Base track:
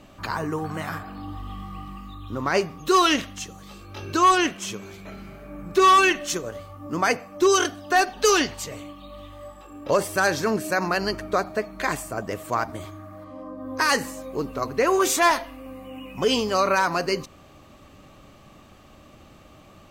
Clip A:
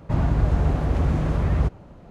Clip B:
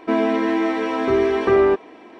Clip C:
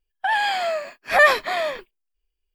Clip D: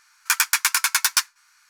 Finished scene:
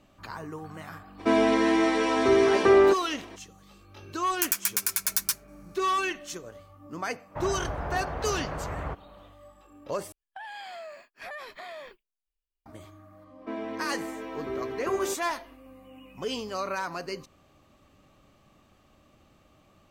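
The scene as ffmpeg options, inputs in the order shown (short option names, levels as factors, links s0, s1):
-filter_complex "[2:a]asplit=2[s0][s1];[0:a]volume=0.282[s2];[s0]bass=f=250:g=-4,treble=f=4000:g=13[s3];[4:a]aemphasis=mode=production:type=50fm[s4];[1:a]acrossover=split=520 2400:gain=0.158 1 0.126[s5][s6][s7];[s5][s6][s7]amix=inputs=3:normalize=0[s8];[3:a]acompressor=threshold=0.0562:ratio=6:attack=3.2:release=140:knee=1:detection=peak[s9];[s2]asplit=2[s10][s11];[s10]atrim=end=10.124[s12];[s9]atrim=end=2.54,asetpts=PTS-STARTPTS,volume=0.237[s13];[s11]atrim=start=12.656[s14];[s3]atrim=end=2.19,asetpts=PTS-STARTPTS,volume=0.794,afade=t=in:d=0.02,afade=t=out:st=2.17:d=0.02,adelay=1180[s15];[s4]atrim=end=1.69,asetpts=PTS-STARTPTS,volume=0.158,afade=t=in:d=0.004:c=hsin,afade=t=out:st=1.686:d=0.004:c=hsin,adelay=4120[s16];[s8]atrim=end=2.1,asetpts=PTS-STARTPTS,afade=t=in:d=0.1,afade=t=out:st=2:d=0.1,adelay=7260[s17];[s1]atrim=end=2.19,asetpts=PTS-STARTPTS,volume=0.158,afade=t=in:d=0.05,afade=t=out:st=2.14:d=0.05,adelay=13390[s18];[s12][s13]acrossfade=d=0.004:c1=hsin:c2=hsin[s19];[s19][s14]acrossfade=d=0.004:c1=hsin:c2=hsin[s20];[s20][s15][s16][s17][s18]amix=inputs=5:normalize=0"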